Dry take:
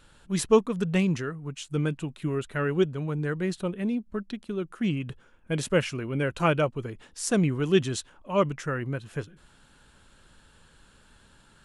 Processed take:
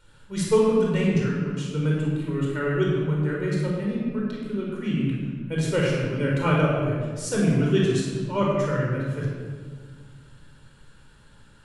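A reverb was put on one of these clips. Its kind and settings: shoebox room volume 2100 m³, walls mixed, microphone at 4.6 m; gain -6 dB

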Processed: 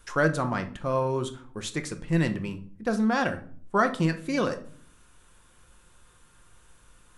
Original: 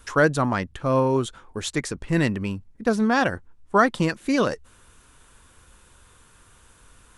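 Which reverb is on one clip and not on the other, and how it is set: shoebox room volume 540 m³, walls furnished, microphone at 0.89 m; gain -5.5 dB

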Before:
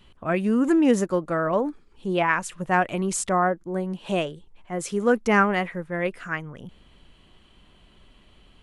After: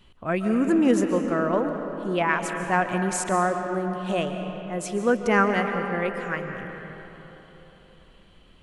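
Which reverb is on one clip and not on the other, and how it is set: digital reverb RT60 3.8 s, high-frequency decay 0.55×, pre-delay 0.1 s, DRR 5.5 dB; gain -1.5 dB

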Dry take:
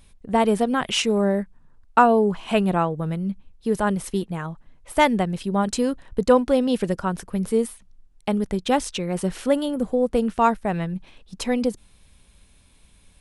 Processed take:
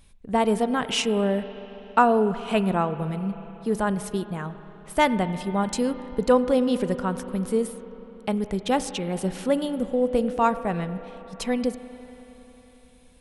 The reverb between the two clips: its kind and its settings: spring tank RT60 3.9 s, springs 32/46 ms, chirp 80 ms, DRR 12 dB; gain -2.5 dB

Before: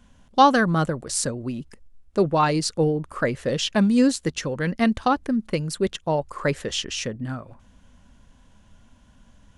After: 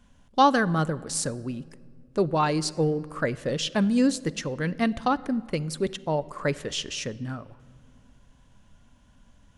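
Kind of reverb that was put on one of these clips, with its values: shoebox room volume 3900 m³, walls mixed, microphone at 0.32 m; gain -3.5 dB

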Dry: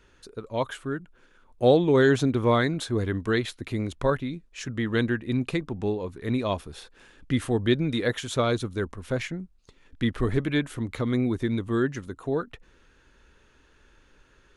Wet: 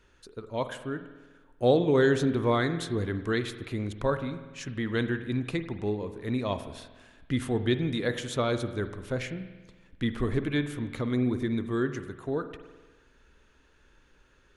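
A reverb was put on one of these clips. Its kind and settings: spring tank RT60 1.3 s, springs 48 ms, chirp 40 ms, DRR 10 dB; gain -3.5 dB

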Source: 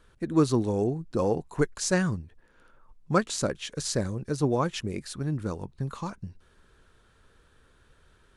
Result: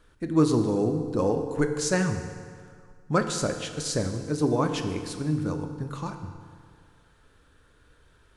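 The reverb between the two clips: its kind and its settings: FDN reverb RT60 2 s, low-frequency decay 0.95×, high-frequency decay 0.75×, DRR 5.5 dB

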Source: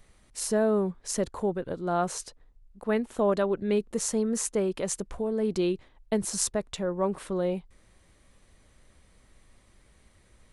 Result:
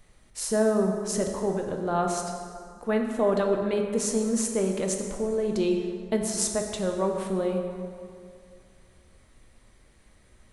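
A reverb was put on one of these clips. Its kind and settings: plate-style reverb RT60 2.3 s, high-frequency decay 0.6×, DRR 2.5 dB

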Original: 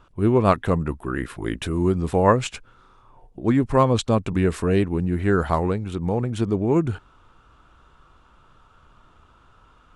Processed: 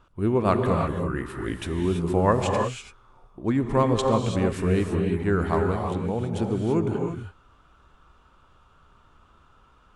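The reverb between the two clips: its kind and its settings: non-linear reverb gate 0.36 s rising, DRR 2.5 dB; gain -4.5 dB

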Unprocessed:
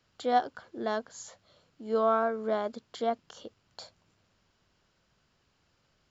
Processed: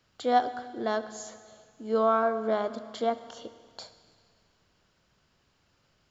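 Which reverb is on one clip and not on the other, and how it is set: Schroeder reverb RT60 2 s, combs from 25 ms, DRR 12 dB; gain +2 dB

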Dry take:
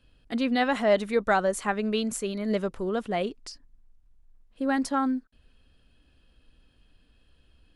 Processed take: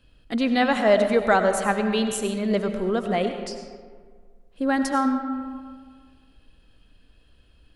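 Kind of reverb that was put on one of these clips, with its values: digital reverb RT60 1.8 s, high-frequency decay 0.5×, pre-delay 55 ms, DRR 6.5 dB; gain +3.5 dB

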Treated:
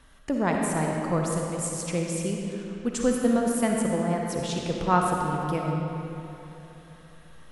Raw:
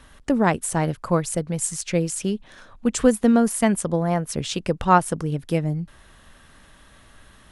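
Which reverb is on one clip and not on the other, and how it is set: digital reverb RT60 3.3 s, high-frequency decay 0.7×, pre-delay 15 ms, DRR -0.5 dB; gain -7 dB

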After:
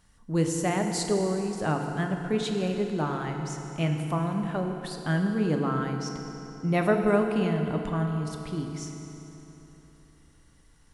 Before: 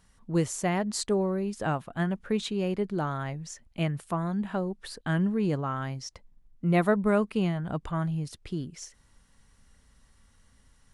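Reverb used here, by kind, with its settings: FDN reverb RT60 3.5 s, high-frequency decay 0.75×, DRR 3 dB

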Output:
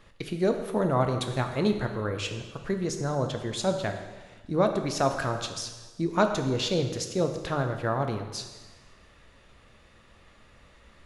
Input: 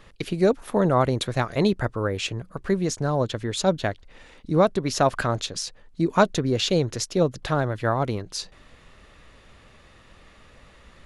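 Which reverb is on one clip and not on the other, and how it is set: plate-style reverb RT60 1.3 s, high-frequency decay 0.95×, DRR 5 dB; gain -5.5 dB

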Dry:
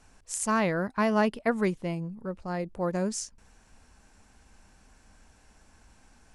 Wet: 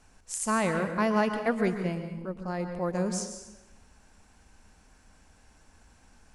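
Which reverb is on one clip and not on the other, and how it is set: plate-style reverb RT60 0.99 s, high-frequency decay 0.8×, pre-delay 0.105 s, DRR 7 dB; gain -1 dB

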